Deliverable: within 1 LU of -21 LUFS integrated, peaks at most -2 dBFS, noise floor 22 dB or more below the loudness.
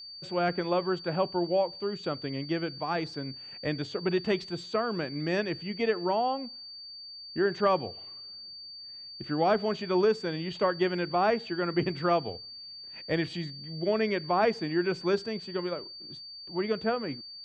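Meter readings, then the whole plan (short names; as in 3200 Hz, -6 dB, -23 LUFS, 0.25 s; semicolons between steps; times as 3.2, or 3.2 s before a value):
steady tone 4600 Hz; tone level -42 dBFS; loudness -30.0 LUFS; peak -13.0 dBFS; loudness target -21.0 LUFS
-> notch 4600 Hz, Q 30; gain +9 dB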